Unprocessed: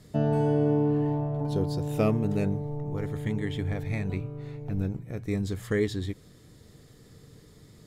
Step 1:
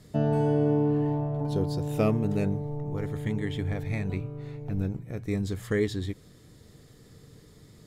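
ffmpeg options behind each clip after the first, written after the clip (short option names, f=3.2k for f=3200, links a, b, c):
-af anull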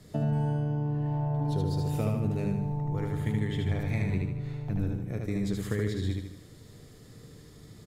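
-filter_complex "[0:a]acrossover=split=140[a][b];[b]acompressor=threshold=-31dB:ratio=6[c];[a][c]amix=inputs=2:normalize=0,asplit=2[d][e];[e]aecho=0:1:76|152|228|304|380|456:0.708|0.333|0.156|0.0735|0.0345|0.0162[f];[d][f]amix=inputs=2:normalize=0"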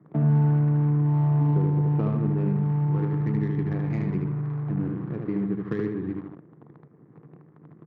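-af "acrusher=bits=8:dc=4:mix=0:aa=0.000001,highpass=f=140:w=0.5412,highpass=f=140:w=1.3066,equalizer=f=150:t=q:w=4:g=9,equalizer=f=330:t=q:w=4:g=7,equalizer=f=590:t=q:w=4:g=-6,equalizer=f=1.1k:t=q:w=4:g=6,lowpass=f=2.1k:w=0.5412,lowpass=f=2.1k:w=1.3066,adynamicsmooth=sensitivity=3.5:basefreq=1.2k,volume=2dB"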